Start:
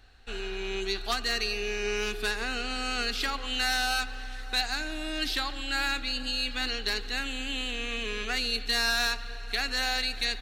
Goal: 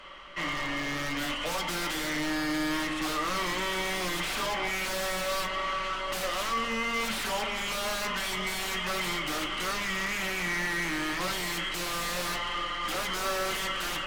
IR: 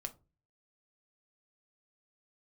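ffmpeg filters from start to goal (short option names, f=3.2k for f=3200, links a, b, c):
-filter_complex "[0:a]acrossover=split=320|990[a][b][c];[c]aeval=exprs='(mod(31.6*val(0)+1,2)-1)/31.6':c=same[d];[a][b][d]amix=inputs=3:normalize=0,asetrate=32634,aresample=44100,asplit=2[e][f];[f]highpass=f=720:p=1,volume=26dB,asoftclip=type=tanh:threshold=-20.5dB[g];[e][g]amix=inputs=2:normalize=0,lowpass=f=3.1k:p=1,volume=-6dB[h];[1:a]atrim=start_sample=2205[i];[h][i]afir=irnorm=-1:irlink=0"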